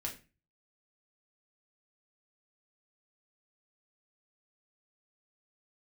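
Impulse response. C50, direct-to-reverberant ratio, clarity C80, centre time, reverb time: 11.0 dB, -1.5 dB, 16.5 dB, 17 ms, 0.30 s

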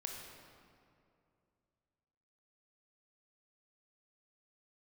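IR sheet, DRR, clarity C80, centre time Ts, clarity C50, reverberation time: 0.5 dB, 3.0 dB, 84 ms, 2.0 dB, 2.5 s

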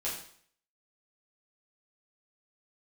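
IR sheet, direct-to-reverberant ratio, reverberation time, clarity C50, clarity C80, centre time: -8.0 dB, 0.55 s, 4.5 dB, 8.0 dB, 38 ms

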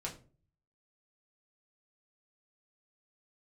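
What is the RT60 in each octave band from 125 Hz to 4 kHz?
0.80 s, 0.55 s, 0.45 s, 0.30 s, 0.30 s, 0.25 s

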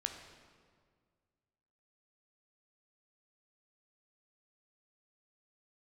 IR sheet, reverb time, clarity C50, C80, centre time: 1.9 s, 6.5 dB, 8.0 dB, 33 ms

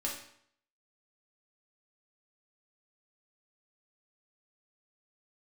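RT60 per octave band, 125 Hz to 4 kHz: 0.65 s, 0.65 s, 0.65 s, 0.65 s, 0.60 s, 0.60 s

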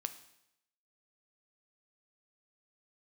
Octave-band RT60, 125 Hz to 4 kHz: 0.80 s, 0.80 s, 0.80 s, 0.80 s, 0.80 s, 0.80 s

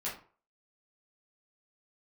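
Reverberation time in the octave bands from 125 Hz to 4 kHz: 0.40 s, 0.35 s, 0.40 s, 0.45 s, 0.35 s, 0.25 s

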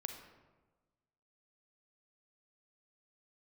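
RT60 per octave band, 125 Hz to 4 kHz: 1.5 s, 1.4 s, 1.3 s, 1.2 s, 0.95 s, 0.70 s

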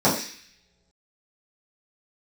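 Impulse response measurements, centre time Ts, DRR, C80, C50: 33 ms, -10.0 dB, 9.5 dB, 6.5 dB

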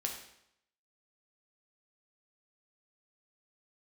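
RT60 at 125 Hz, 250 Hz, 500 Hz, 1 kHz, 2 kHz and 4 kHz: 0.75 s, 0.75 s, 0.75 s, 0.75 s, 0.70 s, 0.70 s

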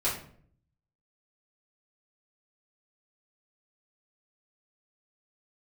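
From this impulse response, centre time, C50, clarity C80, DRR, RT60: 33 ms, 6.0 dB, 10.5 dB, -9.0 dB, 0.55 s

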